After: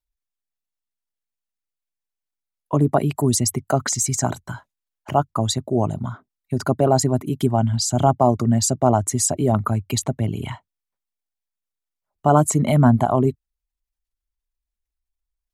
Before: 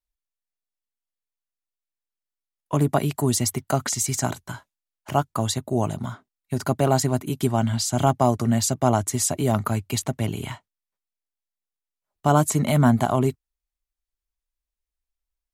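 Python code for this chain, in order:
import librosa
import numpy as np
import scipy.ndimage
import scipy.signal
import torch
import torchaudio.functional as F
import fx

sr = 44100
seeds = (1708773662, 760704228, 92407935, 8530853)

y = fx.envelope_sharpen(x, sr, power=1.5)
y = y * 10.0 ** (3.0 / 20.0)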